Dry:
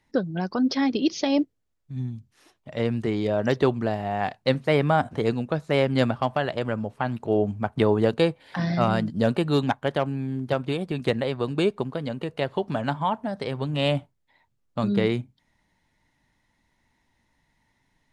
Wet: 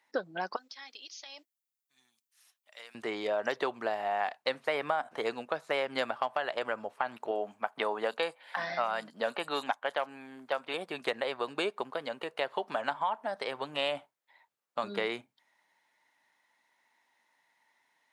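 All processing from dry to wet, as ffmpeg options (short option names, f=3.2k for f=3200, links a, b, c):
-filter_complex "[0:a]asettb=1/sr,asplit=3[a][b][c];[a]atrim=end=0.564[d];[b]atrim=start=0.56:end=2.95,asetpts=PTS-STARTPTS,afade=t=in:d=0.004:c=qsin,afade=t=out:st=2.386:d=0.004:c=qsin,aderivative,acompressor=threshold=-40dB:ratio=12:attack=3.2:release=140:knee=1:detection=peak[e];[c]atrim=start=2.946[f];[d][e]acrossfade=d=0.004:c1=hsin:c2=qsin[g];[g][f]acrossfade=d=0.004:c1=qsin:c2=hsin,asettb=1/sr,asplit=3[h][i][j];[h]atrim=end=7.314[k];[i]atrim=start=7.31:end=10.74,asetpts=PTS-STARTPTS,afade=t=in:d=0.004:c=qsin,afade=t=out:st=3.426:d=0.004:c=qsin,highpass=200,equalizer=f=360:w=2.4:g=-6.5,acrossover=split=5200[l][m];[m]adelay=30[n];[l][n]amix=inputs=2:normalize=0,atrim=end_sample=151263[o];[j]atrim=start=10.736[p];[k][o]acrossfade=d=0.004:c1=hsin:c2=qsin[q];[q][p]acrossfade=d=0.004:c1=qsin:c2=hsin,highpass=730,equalizer=f=5.8k:w=0.47:g=-5,acompressor=threshold=-29dB:ratio=6,volume=2.5dB"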